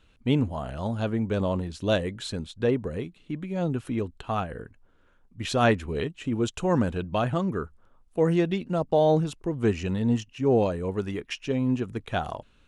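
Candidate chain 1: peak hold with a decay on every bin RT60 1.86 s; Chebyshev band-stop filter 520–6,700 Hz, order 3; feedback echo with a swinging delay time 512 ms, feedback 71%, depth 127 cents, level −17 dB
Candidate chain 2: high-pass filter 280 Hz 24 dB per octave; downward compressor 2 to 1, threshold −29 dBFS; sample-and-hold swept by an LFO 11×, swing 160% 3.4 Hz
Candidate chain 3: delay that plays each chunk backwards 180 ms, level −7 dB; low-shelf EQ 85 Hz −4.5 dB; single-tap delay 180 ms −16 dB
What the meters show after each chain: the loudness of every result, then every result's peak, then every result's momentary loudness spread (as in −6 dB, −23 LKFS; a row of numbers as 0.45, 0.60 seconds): −25.5, −33.5, −27.0 LKFS; −10.5, −15.5, −9.0 dBFS; 10, 8, 10 LU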